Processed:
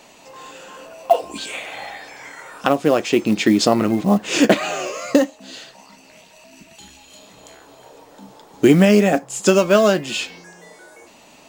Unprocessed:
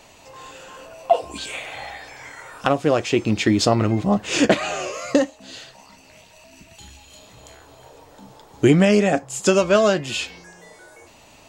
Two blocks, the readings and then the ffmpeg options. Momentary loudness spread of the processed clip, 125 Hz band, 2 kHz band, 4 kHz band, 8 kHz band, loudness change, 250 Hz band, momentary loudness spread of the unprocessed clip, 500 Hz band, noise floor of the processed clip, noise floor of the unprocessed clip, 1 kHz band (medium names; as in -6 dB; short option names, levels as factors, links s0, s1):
21 LU, -0.5 dB, +1.5 dB, +1.5 dB, +1.5 dB, +2.5 dB, +3.5 dB, 22 LU, +2.0 dB, -48 dBFS, -50 dBFS, +2.0 dB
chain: -af "lowshelf=f=140:t=q:w=1.5:g=-9.5,acrusher=bits=7:mode=log:mix=0:aa=0.000001,volume=1.19"